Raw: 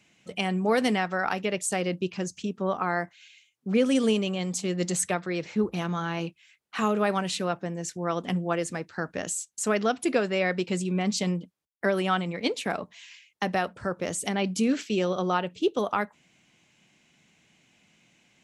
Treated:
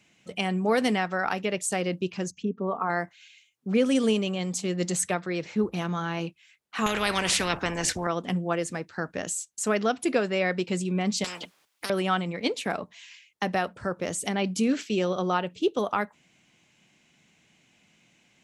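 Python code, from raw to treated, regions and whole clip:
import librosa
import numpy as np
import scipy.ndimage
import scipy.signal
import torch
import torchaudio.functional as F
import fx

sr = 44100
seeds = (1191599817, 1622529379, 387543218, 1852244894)

y = fx.chain(x, sr, fx.envelope_sharpen(power=1.5),
    fx.lowpass(hz=2200.0, slope=6),
    fx.comb(ms=4.4, depth=0.42), at=(2.31, 2.9))
y = fx.chain(y, sr, fx.tilt_eq(slope=-3.0),
    fx.spectral_comp(ratio=4.0), at=(6.86, 8.07))
y = fx.chain(y, sr, fx.highpass(hz=1000.0, slope=6),
    fx.high_shelf(hz=5900.0, db=-10.0),
    fx.spectral_comp(ratio=10.0), at=(11.24, 11.9))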